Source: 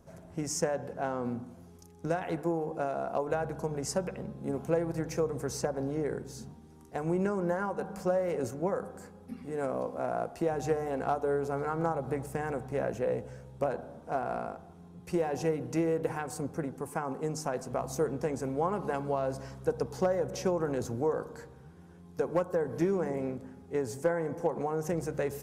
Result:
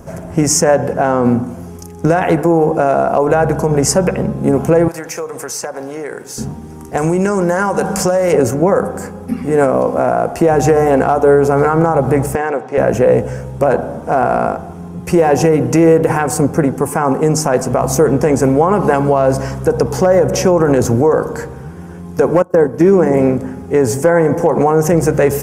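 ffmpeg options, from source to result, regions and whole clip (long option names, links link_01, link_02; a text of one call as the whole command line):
ffmpeg -i in.wav -filter_complex "[0:a]asettb=1/sr,asplit=3[link_01][link_02][link_03];[link_01]atrim=end=4.884[link_04];[link_02]atrim=start=4.88:end=6.38,asetpts=PTS-STARTPTS,afade=type=in:duration=0.004:curve=qsin,afade=type=out:start_time=1.496:duration=0.004:curve=qsin,highpass=frequency=1500:poles=1,acompressor=threshold=-45dB:ratio=2:attack=3.2:release=140:knee=1:detection=peak[link_05];[link_03]atrim=start=6.376[link_06];[link_04][link_05]acrossfade=duration=0.004:curve1=hsin:curve2=qsin[link_07];[link_07][link_06]acrossfade=duration=0.004:curve1=qsin:curve2=hsin,asettb=1/sr,asplit=3[link_08][link_09][link_10];[link_08]atrim=end=6.974[link_11];[link_09]atrim=start=6.97:end=8.33,asetpts=PTS-STARTPTS,afade=type=in:duration=0.004:curve=qsin,afade=type=out:start_time=1.356:duration=0.004:curve=qsin,equalizer=frequency=6800:width_type=o:width=2.4:gain=12,acompressor=threshold=-32dB:ratio=6:attack=3.2:release=140:knee=1:detection=peak[link_12];[link_10]atrim=start=8.326[link_13];[link_11][link_12]acrossfade=duration=0.004:curve1=hsin:curve2=qsin[link_14];[link_14][link_13]acrossfade=duration=0.004:curve1=qsin:curve2=hsin,asettb=1/sr,asplit=3[link_15][link_16][link_17];[link_15]atrim=end=12.354[link_18];[link_16]atrim=start=12.35:end=12.78,asetpts=PTS-STARTPTS,afade=type=in:duration=0.004:curve=qsin,afade=type=out:start_time=0.426:duration=0.004:curve=qsin,highpass=430,lowpass=4100,equalizer=frequency=1200:width_type=o:width=3:gain=-5[link_19];[link_17]atrim=start=12.776[link_20];[link_18][link_19]acrossfade=duration=0.004:curve1=hsin:curve2=qsin[link_21];[link_21][link_20]acrossfade=duration=0.004:curve1=qsin:curve2=hsin,asettb=1/sr,asplit=3[link_22][link_23][link_24];[link_22]atrim=end=22.424[link_25];[link_23]atrim=start=22.42:end=23.12,asetpts=PTS-STARTPTS,afade=type=in:duration=0.004:curve=qsin,afade=type=out:start_time=0.696:duration=0.004:curve=qsin,agate=range=-33dB:threshold=-30dB:ratio=3:release=100:detection=peak,equalizer=frequency=290:width_type=o:width=1.1:gain=4[link_26];[link_24]atrim=start=23.116[link_27];[link_25][link_26]acrossfade=duration=0.004:curve1=hsin:curve2=qsin[link_28];[link_28][link_27]acrossfade=duration=0.004:curve1=qsin:curve2=hsin,equalizer=frequency=3900:width_type=o:width=0.53:gain=-8.5,alimiter=level_in=23.5dB:limit=-1dB:release=50:level=0:latency=1,volume=-1dB" out.wav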